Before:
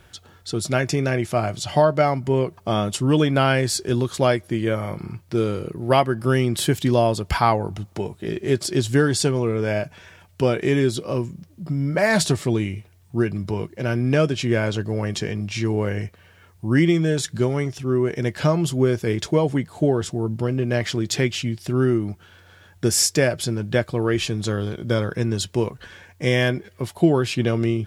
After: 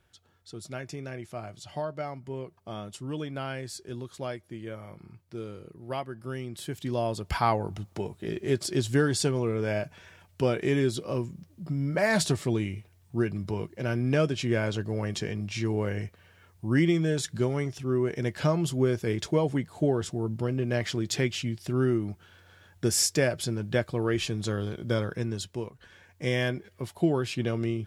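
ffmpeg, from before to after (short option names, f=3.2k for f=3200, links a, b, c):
-af "volume=0.5dB,afade=t=in:st=6.65:d=0.9:silence=0.298538,afade=t=out:st=24.97:d=0.74:silence=0.375837,afade=t=in:st=25.71:d=0.53:silence=0.473151"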